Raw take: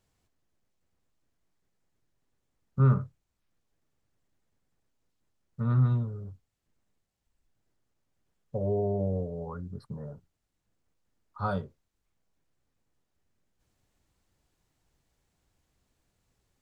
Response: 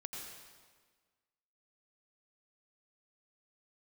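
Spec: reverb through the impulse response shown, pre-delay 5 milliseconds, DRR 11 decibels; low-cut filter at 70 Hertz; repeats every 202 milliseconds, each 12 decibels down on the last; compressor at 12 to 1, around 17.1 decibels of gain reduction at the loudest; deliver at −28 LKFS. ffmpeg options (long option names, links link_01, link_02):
-filter_complex "[0:a]highpass=70,acompressor=threshold=-35dB:ratio=12,aecho=1:1:202|404|606:0.251|0.0628|0.0157,asplit=2[link_01][link_02];[1:a]atrim=start_sample=2205,adelay=5[link_03];[link_02][link_03]afir=irnorm=-1:irlink=0,volume=-9.5dB[link_04];[link_01][link_04]amix=inputs=2:normalize=0,volume=14dB"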